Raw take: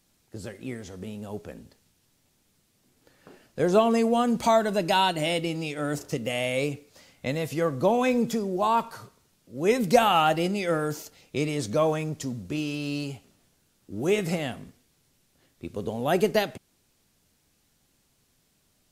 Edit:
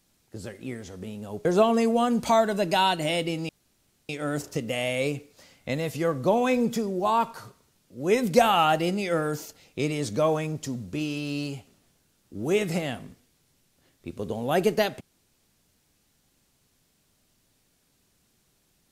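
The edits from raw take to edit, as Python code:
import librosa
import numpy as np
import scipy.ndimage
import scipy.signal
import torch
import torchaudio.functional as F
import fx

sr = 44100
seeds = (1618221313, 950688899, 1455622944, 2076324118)

y = fx.edit(x, sr, fx.cut(start_s=1.45, length_s=2.17),
    fx.insert_room_tone(at_s=5.66, length_s=0.6), tone=tone)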